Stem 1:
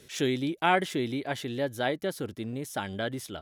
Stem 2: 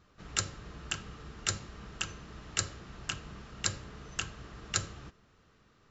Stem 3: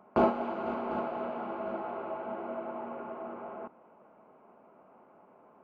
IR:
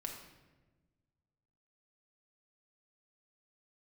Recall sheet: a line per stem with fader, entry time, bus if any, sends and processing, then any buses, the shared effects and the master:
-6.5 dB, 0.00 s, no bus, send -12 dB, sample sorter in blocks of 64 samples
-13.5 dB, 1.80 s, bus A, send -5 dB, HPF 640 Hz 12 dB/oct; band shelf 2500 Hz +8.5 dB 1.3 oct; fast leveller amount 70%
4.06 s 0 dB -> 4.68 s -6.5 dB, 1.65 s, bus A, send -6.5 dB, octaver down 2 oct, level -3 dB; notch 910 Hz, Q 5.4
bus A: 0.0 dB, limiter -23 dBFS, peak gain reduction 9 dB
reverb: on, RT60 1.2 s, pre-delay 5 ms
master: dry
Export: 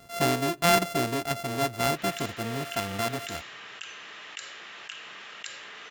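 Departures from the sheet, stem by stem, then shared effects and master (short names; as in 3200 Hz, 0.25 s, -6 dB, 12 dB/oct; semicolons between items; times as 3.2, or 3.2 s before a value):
stem 1 -6.5 dB -> +2.0 dB; stem 3: muted; reverb return -8.5 dB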